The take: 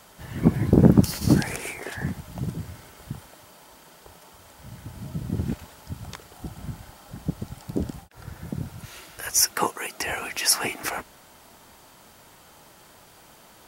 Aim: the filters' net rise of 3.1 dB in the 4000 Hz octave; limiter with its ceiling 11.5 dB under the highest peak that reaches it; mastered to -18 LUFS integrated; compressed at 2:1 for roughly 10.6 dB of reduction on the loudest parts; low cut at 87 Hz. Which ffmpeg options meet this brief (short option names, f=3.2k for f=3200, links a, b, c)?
-af "highpass=87,equalizer=f=4k:t=o:g=5,acompressor=threshold=-29dB:ratio=2,volume=18dB,alimiter=limit=-4.5dB:level=0:latency=1"